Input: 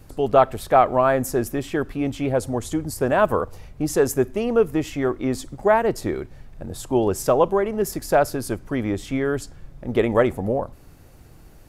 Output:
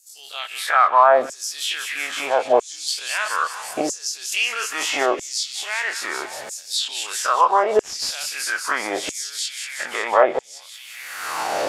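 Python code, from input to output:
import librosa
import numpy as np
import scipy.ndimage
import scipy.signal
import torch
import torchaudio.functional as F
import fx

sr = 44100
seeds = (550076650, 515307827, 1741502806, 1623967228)

p1 = fx.spec_dilate(x, sr, span_ms=60)
p2 = fx.recorder_agc(p1, sr, target_db=-6.5, rise_db_per_s=33.0, max_gain_db=30)
p3 = p2 + fx.echo_wet_highpass(p2, sr, ms=186, feedback_pct=77, hz=3000.0, wet_db=-5.0, dry=0)
p4 = fx.filter_lfo_highpass(p3, sr, shape='saw_down', hz=0.77, low_hz=520.0, high_hz=7300.0, q=3.1)
p5 = fx.high_shelf(p4, sr, hz=3200.0, db=9.0, at=(4.32, 5.06))
p6 = fx.overload_stage(p5, sr, gain_db=17.0, at=(7.81, 8.29))
p7 = fx.env_lowpass_down(p6, sr, base_hz=2500.0, full_db=-11.0)
y = p7 * 10.0 ** (-2.0 / 20.0)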